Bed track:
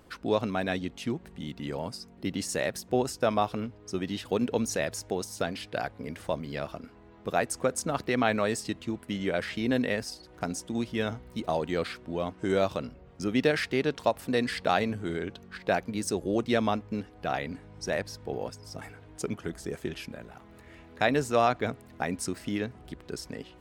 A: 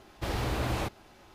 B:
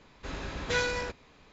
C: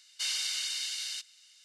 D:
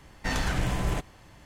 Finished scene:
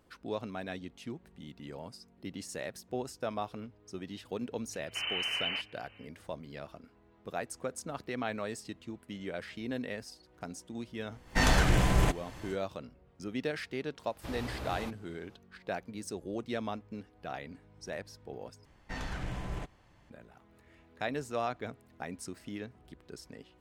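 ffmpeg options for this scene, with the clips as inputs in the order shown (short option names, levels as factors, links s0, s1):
-filter_complex "[1:a]asplit=2[s0][s1];[4:a]asplit=2[s2][s3];[0:a]volume=0.316[s4];[s0]lowpass=f=2600:t=q:w=0.5098,lowpass=f=2600:t=q:w=0.6013,lowpass=f=2600:t=q:w=0.9,lowpass=f=2600:t=q:w=2.563,afreqshift=-3100[s5];[s2]dynaudnorm=f=140:g=3:m=6.68[s6];[s3]highshelf=f=6700:g=-10.5[s7];[s4]asplit=2[s8][s9];[s8]atrim=end=18.654[s10];[s7]atrim=end=1.45,asetpts=PTS-STARTPTS,volume=0.316[s11];[s9]atrim=start=20.096[s12];[s5]atrim=end=1.34,asetpts=PTS-STARTPTS,volume=0.631,afade=t=in:d=0.004:c=hsin,afade=t=out:st=1.336:d=0.004:c=hsin,adelay=208593S[s13];[s6]atrim=end=1.45,asetpts=PTS-STARTPTS,volume=0.316,afade=t=in:d=0.004:c=hsin,afade=t=out:st=1.446:d=0.004:c=hsin,adelay=11110[s14];[s1]atrim=end=1.34,asetpts=PTS-STARTPTS,volume=0.335,afade=t=in:d=0.004:c=hsin,afade=t=out:st=1.336:d=0.004:c=hsin,adelay=14020[s15];[s10][s11]acrossfade=d=0.004:c1=hsin:c2=hsin[s16];[s16][s12]acrossfade=d=0.004:c1=hsin:c2=hsin[s17];[s17][s13][s14][s15]amix=inputs=4:normalize=0"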